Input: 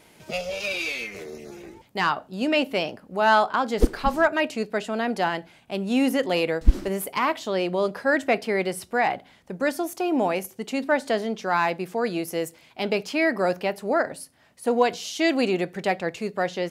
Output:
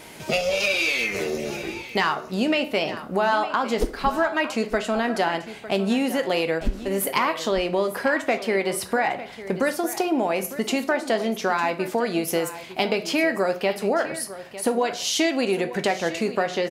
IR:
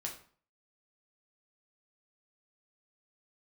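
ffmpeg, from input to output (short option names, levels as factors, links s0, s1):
-filter_complex "[0:a]acompressor=threshold=0.0282:ratio=6,aecho=1:1:903:0.188,asplit=2[s0][s1];[1:a]atrim=start_sample=2205,lowshelf=f=210:g=-9[s2];[s1][s2]afir=irnorm=-1:irlink=0,volume=0.944[s3];[s0][s3]amix=inputs=2:normalize=0,volume=2.24"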